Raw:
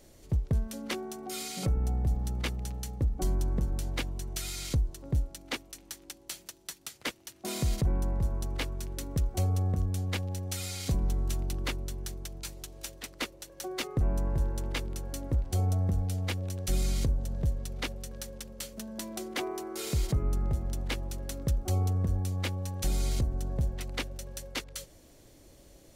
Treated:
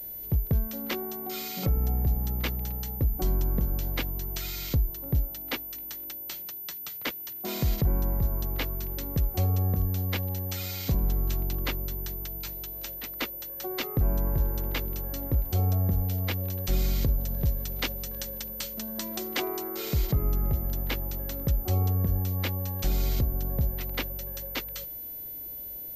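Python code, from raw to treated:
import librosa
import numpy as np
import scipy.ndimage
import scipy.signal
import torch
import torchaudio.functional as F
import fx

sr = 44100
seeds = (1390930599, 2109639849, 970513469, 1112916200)

y = fx.high_shelf(x, sr, hz=3800.0, db=8.0, at=(17.08, 19.69))
y = fx.pwm(y, sr, carrier_hz=14000.0)
y = y * librosa.db_to_amplitude(2.5)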